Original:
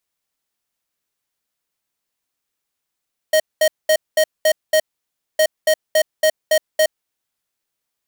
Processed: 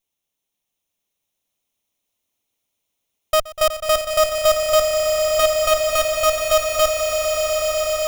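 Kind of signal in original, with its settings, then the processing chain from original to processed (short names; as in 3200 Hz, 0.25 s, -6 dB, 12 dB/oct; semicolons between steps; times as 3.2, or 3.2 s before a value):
beep pattern square 625 Hz, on 0.07 s, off 0.21 s, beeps 6, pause 0.59 s, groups 2, -13.5 dBFS
minimum comb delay 0.31 ms; swelling echo 0.123 s, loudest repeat 8, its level -9 dB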